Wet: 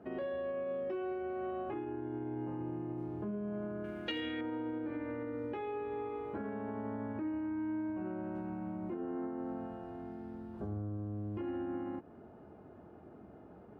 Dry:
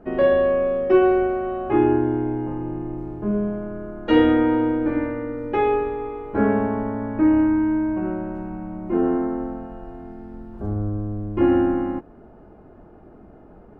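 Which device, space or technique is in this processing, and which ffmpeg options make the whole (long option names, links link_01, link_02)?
broadcast voice chain: -filter_complex "[0:a]highpass=frequency=73:width=0.5412,highpass=frequency=73:width=1.3066,deesser=0.95,acompressor=threshold=-27dB:ratio=4,equalizer=frequency=3500:width_type=o:width=0.77:gain=3.5,alimiter=level_in=0.5dB:limit=-24dB:level=0:latency=1:release=85,volume=-0.5dB,asettb=1/sr,asplit=3[link_01][link_02][link_03];[link_01]atrim=end=3.844[link_04];[link_02]atrim=start=3.84:end=4.41,asetpts=PTS-STARTPTS,afade=type=in:duration=0.004:curve=qsin,afade=type=out:start_time=0.566:duration=0.004:curve=qsin,highshelf=frequency=1600:width_type=q:width=1.5:gain=11[link_05];[link_03]atrim=start=4.406[link_06];[link_04][link_05]acrossfade=duration=0.004:curve1=hsin:curve2=qsin[link_07];[link_07][link_06]acrossfade=duration=0.004:curve1=qsin:curve2=hsin,volume=-7dB"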